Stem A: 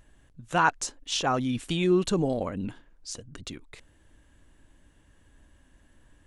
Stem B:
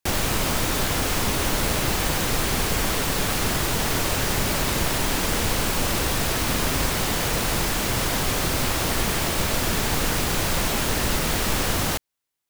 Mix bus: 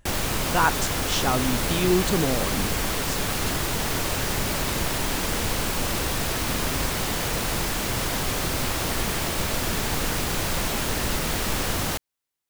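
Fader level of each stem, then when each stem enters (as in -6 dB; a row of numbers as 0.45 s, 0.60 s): +1.0 dB, -2.5 dB; 0.00 s, 0.00 s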